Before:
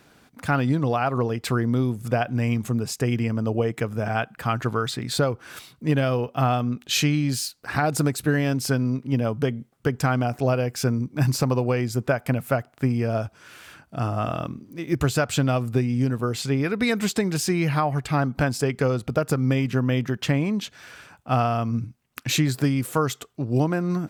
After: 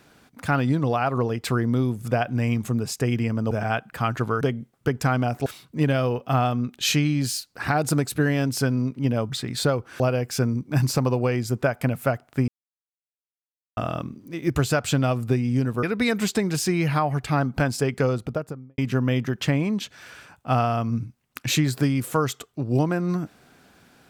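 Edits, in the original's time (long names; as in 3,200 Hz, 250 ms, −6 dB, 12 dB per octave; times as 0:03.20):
0:03.51–0:03.96: remove
0:04.86–0:05.54: swap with 0:09.40–0:10.45
0:12.93–0:14.22: silence
0:16.28–0:16.64: remove
0:18.86–0:19.59: fade out and dull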